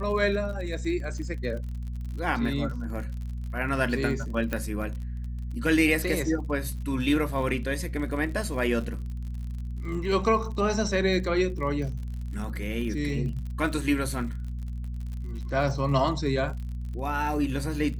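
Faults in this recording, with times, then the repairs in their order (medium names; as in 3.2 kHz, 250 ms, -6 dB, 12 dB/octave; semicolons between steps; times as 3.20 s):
crackle 52 per s -36 dBFS
hum 60 Hz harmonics 4 -33 dBFS
4.53 s: pop -15 dBFS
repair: de-click; de-hum 60 Hz, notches 4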